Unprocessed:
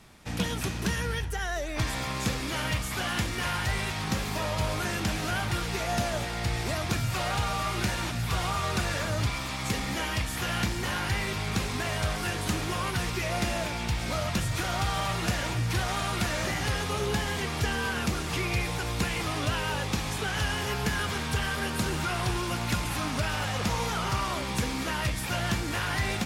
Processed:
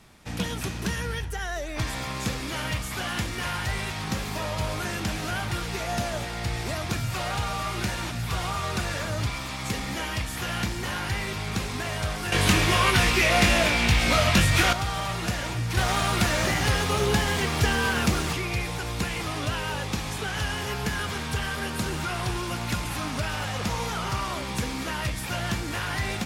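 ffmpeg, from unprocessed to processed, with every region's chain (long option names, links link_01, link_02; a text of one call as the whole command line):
ffmpeg -i in.wav -filter_complex "[0:a]asettb=1/sr,asplit=3[link_01][link_02][link_03];[link_01]atrim=end=12.324[link_04];[link_02]atrim=start=12.32:end=14.73,asetpts=PTS-STARTPTS,afade=type=in:duration=0.004:curve=qsin,afade=type=out:start_time=2.406:duration=0.004:curve=qsin,equalizer=frequency=2500:width_type=o:width=1.3:gain=5.5,acontrast=79,asplit=2[link_05][link_06];[link_06]adelay=21,volume=-6dB[link_07];[link_05][link_07]amix=inputs=2:normalize=0,atrim=end_sample=106281[link_08];[link_03]atrim=start=14.726[link_09];[link_04][link_08]acrossfade=duration=0.004:curve1=hsin:curve2=qsin[link_10];[link_10][link_09]acrossfade=duration=0.004:curve1=qsin:curve2=hsin,asettb=1/sr,asplit=3[link_11][link_12][link_13];[link_11]atrim=end=15.774[link_14];[link_12]atrim=start=15.77:end=18.33,asetpts=PTS-STARTPTS,afade=type=in:duration=0.004:curve=qsin,afade=type=out:start_time=2.556:duration=0.004:curve=qsin,aeval=exprs='sgn(val(0))*max(abs(val(0))-0.00398,0)':channel_layout=same,acontrast=58[link_15];[link_13]atrim=start=18.326[link_16];[link_14][link_15]acrossfade=duration=0.004:curve1=hsin:curve2=qsin[link_17];[link_17][link_16]acrossfade=duration=0.004:curve1=qsin:curve2=hsin" out.wav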